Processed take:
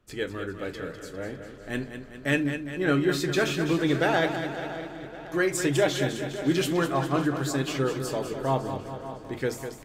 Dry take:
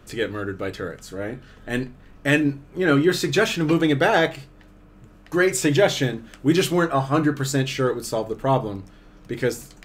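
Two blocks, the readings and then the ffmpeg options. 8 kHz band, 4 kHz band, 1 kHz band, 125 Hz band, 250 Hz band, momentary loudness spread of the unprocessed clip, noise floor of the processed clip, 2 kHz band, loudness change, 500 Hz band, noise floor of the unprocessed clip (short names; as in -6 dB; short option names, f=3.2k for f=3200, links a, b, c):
-5.0 dB, -5.0 dB, -5.0 dB, -5.0 dB, -5.0 dB, 14 LU, -44 dBFS, -5.0 dB, -5.5 dB, -5.0 dB, -49 dBFS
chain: -filter_complex "[0:a]asplit=2[a][b];[b]aecho=0:1:202|404|606|808|1010|1212|1414:0.355|0.209|0.124|0.0729|0.043|0.0254|0.015[c];[a][c]amix=inputs=2:normalize=0,agate=range=-12dB:threshold=-44dB:ratio=16:detection=peak,asplit=2[d][e];[e]adelay=557,lowpass=f=5k:p=1,volume=-14dB,asplit=2[f][g];[g]adelay=557,lowpass=f=5k:p=1,volume=0.52,asplit=2[h][i];[i]adelay=557,lowpass=f=5k:p=1,volume=0.52,asplit=2[j][k];[k]adelay=557,lowpass=f=5k:p=1,volume=0.52,asplit=2[l][m];[m]adelay=557,lowpass=f=5k:p=1,volume=0.52[n];[f][h][j][l][n]amix=inputs=5:normalize=0[o];[d][o]amix=inputs=2:normalize=0,volume=-6dB"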